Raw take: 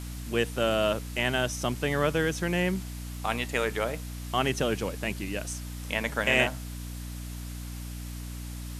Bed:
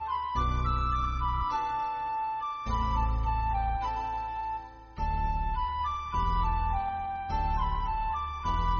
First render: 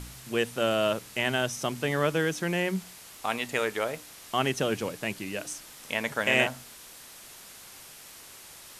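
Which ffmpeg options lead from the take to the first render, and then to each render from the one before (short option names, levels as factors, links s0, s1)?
-af "bandreject=f=60:t=h:w=4,bandreject=f=120:t=h:w=4,bandreject=f=180:t=h:w=4,bandreject=f=240:t=h:w=4,bandreject=f=300:t=h:w=4"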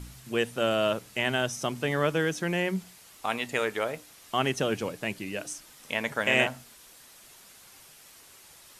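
-af "afftdn=nr=6:nf=-48"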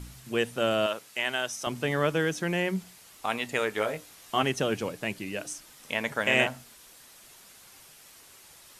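-filter_complex "[0:a]asettb=1/sr,asplit=3[s0][s1][s2];[s0]atrim=end=0.864[s3];[s1]atrim=start=0.86:end=1.67,asetpts=PTS-STARTPTS,afade=t=in:d=0.004:c=qsin,afade=t=out:st=0.806:d=0.004:c=qsin,highpass=f=770:p=1[s4];[s2]atrim=start=1.666[s5];[s3][s4]acrossfade=d=0.004:c1=hsin:c2=qsin[s6];[s6][s5]acrossfade=d=0.004:c1=qsin:c2=hsin,asettb=1/sr,asplit=3[s7][s8][s9];[s7]atrim=end=3.754[s10];[s8]atrim=start=3.75:end=4.43,asetpts=PTS-STARTPTS,afade=t=in:d=0.004:c=qsin,afade=t=out:st=0.676:d=0.004:c=qsin,asplit=2[s11][s12];[s12]adelay=19,volume=0.562[s13];[s11][s13]amix=inputs=2:normalize=0,atrim=end_sample=29988[s14];[s9]atrim=start=4.426[s15];[s10][s14]acrossfade=d=0.004:c1=hsin:c2=qsin[s16];[s16][s15]acrossfade=d=0.004:c1=qsin:c2=hsin"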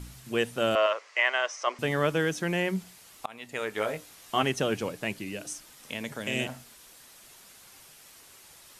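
-filter_complex "[0:a]asettb=1/sr,asplit=3[s0][s1][s2];[s0]atrim=end=0.754[s3];[s1]atrim=start=0.75:end=1.79,asetpts=PTS-STARTPTS,afade=t=in:d=0.004:c=qsin,afade=t=out:st=1.036:d=0.004:c=qsin,highpass=f=420:w=0.5412,highpass=f=420:w=1.3066,equalizer=f=570:t=q:w=4:g=5,equalizer=f=1100:t=q:w=4:g=10,equalizer=f=2000:t=q:w=4:g=9,equalizer=f=3700:t=q:w=4:g=-6,lowpass=f=6100:w=0.5412,lowpass=f=6100:w=1.3066[s4];[s2]atrim=start=1.786[s5];[s3][s4]acrossfade=d=0.004:c1=hsin:c2=qsin[s6];[s6][s5]acrossfade=d=0.004:c1=qsin:c2=hsin,asettb=1/sr,asplit=3[s7][s8][s9];[s7]atrim=end=5.174[s10];[s8]atrim=start=5.17:end=6.49,asetpts=PTS-STARTPTS,afade=t=in:d=0.004:c=qsin,afade=t=out:st=1.316:d=0.004:c=qsin,acrossover=split=430|3000[s11][s12][s13];[s12]acompressor=threshold=0.01:ratio=6:attack=3.2:release=140:knee=2.83:detection=peak[s14];[s11][s14][s13]amix=inputs=3:normalize=0[s15];[s9]atrim=start=6.486[s16];[s10][s15]acrossfade=d=0.004:c1=hsin:c2=qsin[s17];[s17][s16]acrossfade=d=0.004:c1=qsin:c2=hsin,asplit=2[s18][s19];[s18]atrim=end=3.26,asetpts=PTS-STARTPTS,afade=t=out:st=3.256:d=0.004:c=hsin:silence=0.0668344[s20];[s19]atrim=start=3.26,asetpts=PTS-STARTPTS,afade=t=in:d=0.65:silence=0.0668344[s21];[s20][s21]concat=n=2:v=0:a=1"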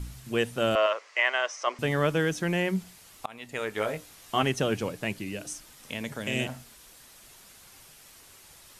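-af "lowshelf=f=110:g=8.5"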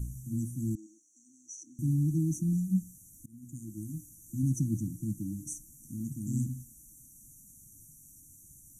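-af "afftfilt=real='re*(1-between(b*sr/4096,340,5700))':imag='im*(1-between(b*sr/4096,340,5700))':win_size=4096:overlap=0.75,equalizer=f=125:t=o:w=1:g=5,equalizer=f=500:t=o:w=1:g=-6,equalizer=f=4000:t=o:w=1:g=-5"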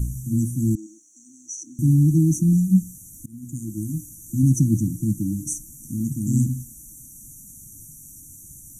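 -af "volume=3.76"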